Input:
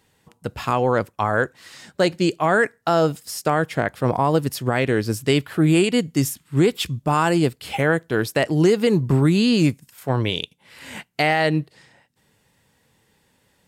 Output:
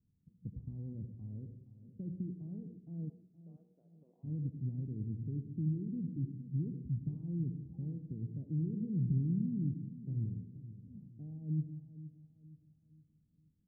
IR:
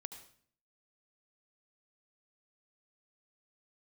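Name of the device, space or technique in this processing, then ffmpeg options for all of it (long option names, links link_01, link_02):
club heard from the street: -filter_complex "[0:a]alimiter=limit=-16dB:level=0:latency=1:release=38,lowpass=frequency=220:width=0.5412,lowpass=frequency=220:width=1.3066[link_01];[1:a]atrim=start_sample=2205[link_02];[link_01][link_02]afir=irnorm=-1:irlink=0,asplit=3[link_03][link_04][link_05];[link_03]afade=type=out:start_time=3.08:duration=0.02[link_06];[link_04]highpass=frequency=570:width=0.5412,highpass=frequency=570:width=1.3066,afade=type=in:start_time=3.08:duration=0.02,afade=type=out:start_time=4.23:duration=0.02[link_07];[link_05]afade=type=in:start_time=4.23:duration=0.02[link_08];[link_06][link_07][link_08]amix=inputs=3:normalize=0,aecho=1:1:470|940|1410|1880:0.2|0.0818|0.0335|0.0138,volume=-3.5dB"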